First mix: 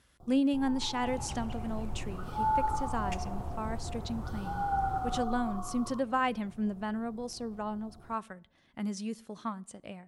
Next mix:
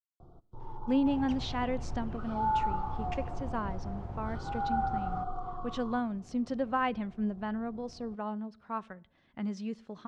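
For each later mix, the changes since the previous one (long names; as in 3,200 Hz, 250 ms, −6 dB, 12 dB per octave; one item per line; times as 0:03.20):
speech: entry +0.60 s
master: add high-frequency loss of the air 170 metres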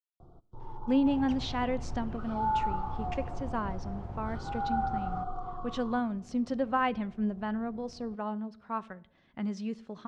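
speech: send +6.0 dB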